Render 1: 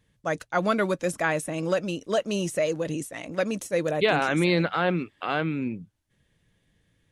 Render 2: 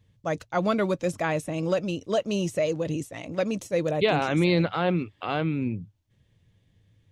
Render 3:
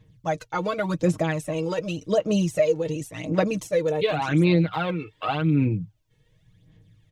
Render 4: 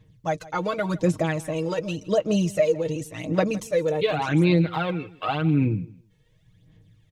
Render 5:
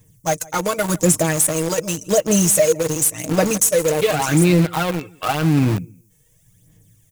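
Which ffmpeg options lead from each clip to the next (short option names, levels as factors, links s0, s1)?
-af "equalizer=f=100:t=o:w=0.67:g=12,equalizer=f=1600:t=o:w=0.67:g=-6,equalizer=f=10000:t=o:w=0.67:g=-9"
-af "aecho=1:1:6.4:0.7,acompressor=threshold=0.0794:ratio=6,aphaser=in_gain=1:out_gain=1:delay=2.3:decay=0.59:speed=0.89:type=sinusoidal"
-af "aecho=1:1:161|322:0.1|0.018"
-filter_complex "[0:a]aexciter=amount=12.2:drive=5.1:freq=6000,asplit=2[s0][s1];[s1]acrusher=bits=3:mix=0:aa=0.000001,volume=0.596[s2];[s0][s2]amix=inputs=2:normalize=0,asoftclip=type=tanh:threshold=0.562,volume=1.19"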